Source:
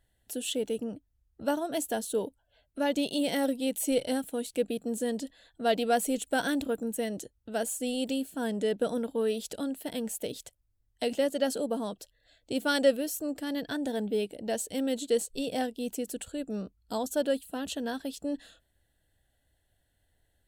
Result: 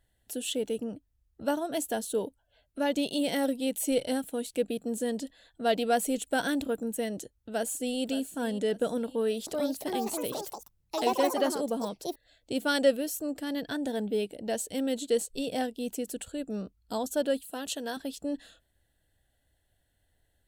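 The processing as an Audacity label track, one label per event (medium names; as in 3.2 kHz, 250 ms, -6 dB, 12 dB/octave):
7.170000	8.010000	echo throw 570 ms, feedback 40%, level -13.5 dB
9.060000	12.650000	ever faster or slower copies 408 ms, each echo +5 st, echoes 2
17.440000	17.970000	tone controls bass -10 dB, treble +5 dB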